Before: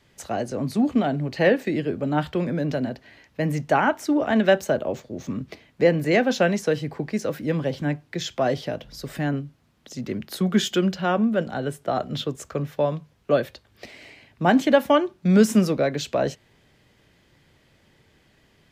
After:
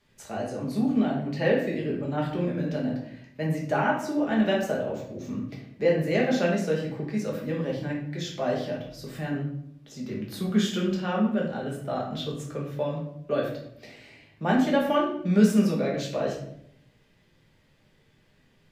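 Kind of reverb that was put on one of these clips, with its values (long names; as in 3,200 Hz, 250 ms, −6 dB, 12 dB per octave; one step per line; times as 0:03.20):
rectangular room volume 140 cubic metres, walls mixed, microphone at 1.3 metres
level −9.5 dB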